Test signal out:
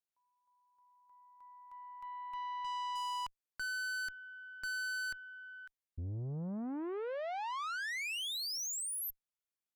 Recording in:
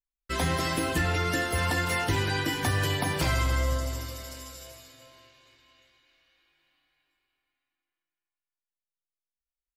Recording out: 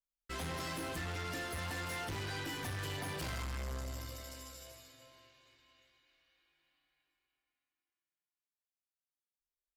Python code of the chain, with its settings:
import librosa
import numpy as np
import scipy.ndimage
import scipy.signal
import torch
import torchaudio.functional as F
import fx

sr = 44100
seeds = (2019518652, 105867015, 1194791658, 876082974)

y = fx.tube_stage(x, sr, drive_db=32.0, bias=0.4)
y = F.gain(torch.from_numpy(y), -5.5).numpy()